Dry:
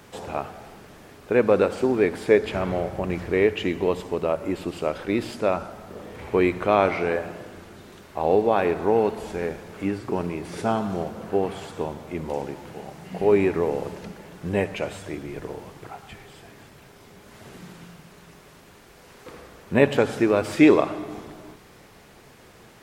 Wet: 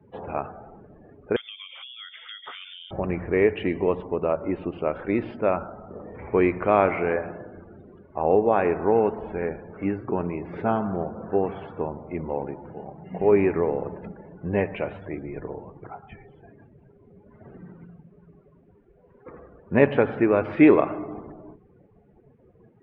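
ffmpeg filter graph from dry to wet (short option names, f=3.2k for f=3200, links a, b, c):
-filter_complex "[0:a]asettb=1/sr,asplit=3[a][b][c];[a]atrim=end=1.364[d];[b]atrim=start=1.36:end=2.91,asetpts=PTS-STARTPTS,afade=t=in:d=0.004:c=qsin,afade=t=out:st=1.546:d=0.004:c=qsin,acompressor=threshold=-28dB:ratio=8:attack=3.2:release=140:knee=1:detection=peak,lowpass=f=3.1k:t=q:w=0.5098,lowpass=f=3.1k:t=q:w=0.6013,lowpass=f=3.1k:t=q:w=0.9,lowpass=f=3.1k:t=q:w=2.563,afreqshift=-3700[e];[c]atrim=start=2.906[f];[d][e]acrossfade=d=0.004:c1=hsin:c2=qsin[g];[g][f]acrossfade=d=0.004:c1=qsin:c2=hsin,afftdn=nr=25:nf=-43,lowpass=f=2.5k:w=0.5412,lowpass=f=2.5k:w=1.3066"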